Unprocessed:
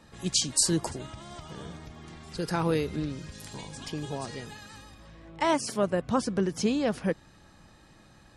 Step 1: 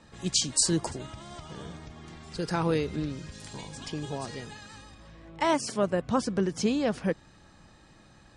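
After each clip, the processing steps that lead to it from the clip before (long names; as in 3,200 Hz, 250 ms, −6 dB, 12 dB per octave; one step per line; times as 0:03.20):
Butterworth low-pass 9,600 Hz 48 dB per octave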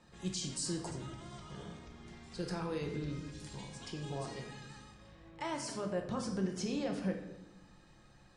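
brickwall limiter −21.5 dBFS, peak gain reduction 10 dB
tuned comb filter 140 Hz, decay 0.69 s, harmonics odd, mix 60%
rectangular room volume 350 cubic metres, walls mixed, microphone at 0.9 metres
level −1 dB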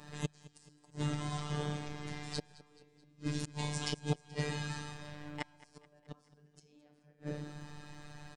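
gate with flip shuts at −31 dBFS, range −38 dB
phases set to zero 148 Hz
repeating echo 215 ms, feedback 53%, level −19.5 dB
level +12.5 dB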